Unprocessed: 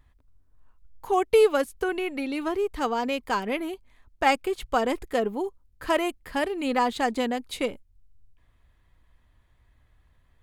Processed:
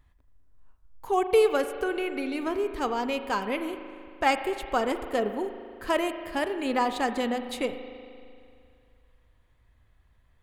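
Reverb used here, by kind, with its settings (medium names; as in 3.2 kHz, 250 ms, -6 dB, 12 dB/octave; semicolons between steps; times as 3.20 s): spring tank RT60 2.4 s, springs 38 ms, chirp 75 ms, DRR 8.5 dB; trim -2 dB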